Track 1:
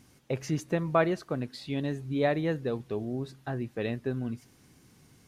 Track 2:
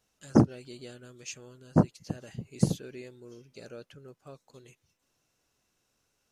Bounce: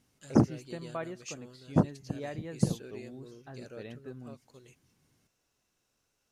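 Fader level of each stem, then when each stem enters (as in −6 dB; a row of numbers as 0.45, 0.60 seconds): −13.0, −2.5 decibels; 0.00, 0.00 seconds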